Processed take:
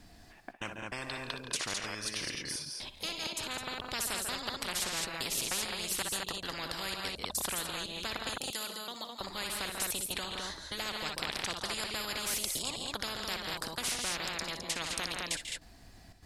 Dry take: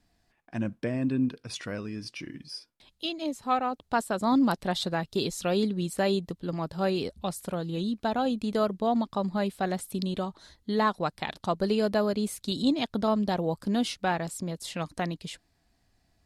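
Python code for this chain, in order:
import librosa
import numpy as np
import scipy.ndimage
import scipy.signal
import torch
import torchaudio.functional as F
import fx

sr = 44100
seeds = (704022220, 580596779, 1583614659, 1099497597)

y = fx.step_gate(x, sr, bpm=147, pattern='xxxxx.xx.', floor_db=-60.0, edge_ms=4.5)
y = fx.pre_emphasis(y, sr, coefficient=0.97, at=(8.29, 9.21))
y = fx.echo_multitap(y, sr, ms=(57, 62, 141, 168, 210), db=(-19.5, -14.5, -16.0, -13.5, -8.5))
y = fx.spectral_comp(y, sr, ratio=10.0)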